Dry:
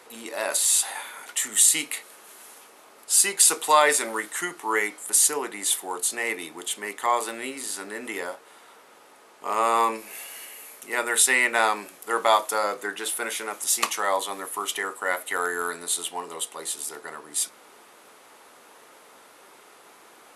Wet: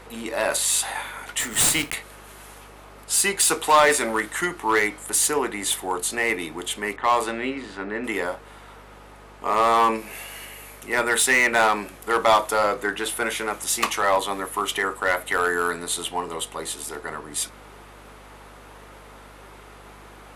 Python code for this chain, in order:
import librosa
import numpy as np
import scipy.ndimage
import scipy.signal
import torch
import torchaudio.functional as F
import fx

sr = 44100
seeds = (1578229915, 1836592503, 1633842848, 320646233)

p1 = fx.block_float(x, sr, bits=3, at=(1.39, 1.93), fade=0.02)
p2 = fx.bass_treble(p1, sr, bass_db=7, treble_db=-7)
p3 = fx.env_lowpass(p2, sr, base_hz=1700.0, full_db=-19.0, at=(6.96, 8.04))
p4 = fx.add_hum(p3, sr, base_hz=50, snr_db=27)
p5 = 10.0 ** (-20.5 / 20.0) * (np.abs((p4 / 10.0 ** (-20.5 / 20.0) + 3.0) % 4.0 - 2.0) - 1.0)
p6 = p4 + (p5 * 10.0 ** (-5.0 / 20.0))
y = p6 * 10.0 ** (1.5 / 20.0)